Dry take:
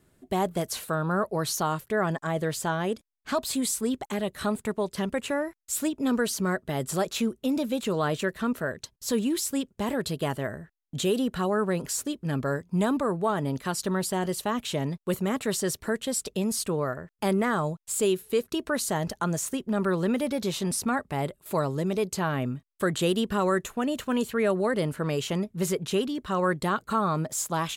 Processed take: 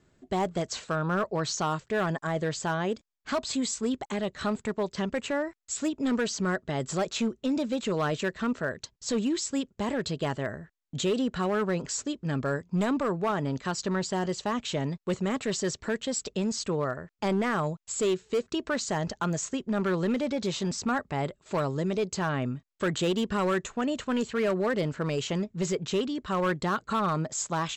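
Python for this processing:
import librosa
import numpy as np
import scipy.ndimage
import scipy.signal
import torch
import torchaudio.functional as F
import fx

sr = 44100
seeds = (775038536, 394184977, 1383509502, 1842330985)

y = scipy.signal.sosfilt(scipy.signal.cheby1(8, 1.0, 7800.0, 'lowpass', fs=sr, output='sos'), x)
y = np.clip(y, -10.0 ** (-21.5 / 20.0), 10.0 ** (-21.5 / 20.0))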